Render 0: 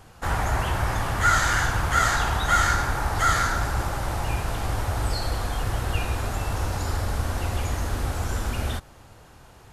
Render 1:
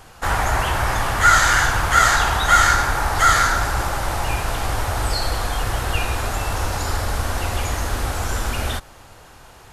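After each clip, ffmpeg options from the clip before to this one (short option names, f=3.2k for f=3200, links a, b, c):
-af "equalizer=f=130:w=0.34:g=-7,volume=7.5dB"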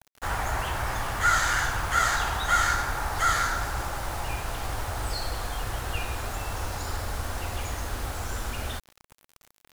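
-af "acrusher=bits=5:mix=0:aa=0.000001,volume=-9dB"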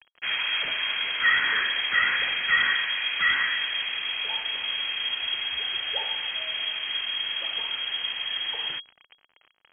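-af "lowpass=f=2.8k:t=q:w=0.5098,lowpass=f=2.8k:t=q:w=0.6013,lowpass=f=2.8k:t=q:w=0.9,lowpass=f=2.8k:t=q:w=2.563,afreqshift=-3300,volume=1dB"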